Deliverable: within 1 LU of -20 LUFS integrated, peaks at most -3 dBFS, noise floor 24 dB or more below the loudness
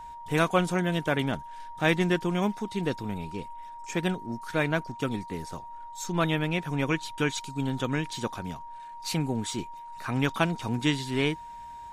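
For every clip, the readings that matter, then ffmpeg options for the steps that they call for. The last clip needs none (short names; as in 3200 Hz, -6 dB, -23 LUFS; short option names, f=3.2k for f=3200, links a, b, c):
steady tone 940 Hz; tone level -40 dBFS; loudness -29.5 LUFS; peak -8.5 dBFS; loudness target -20.0 LUFS
-> -af "bandreject=f=940:w=30"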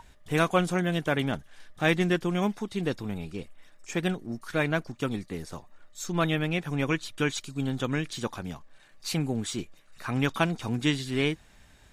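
steady tone none; loudness -29.5 LUFS; peak -8.5 dBFS; loudness target -20.0 LUFS
-> -af "volume=9.5dB,alimiter=limit=-3dB:level=0:latency=1"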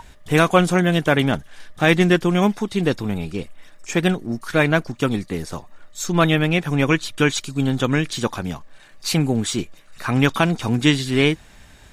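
loudness -20.0 LUFS; peak -3.0 dBFS; noise floor -47 dBFS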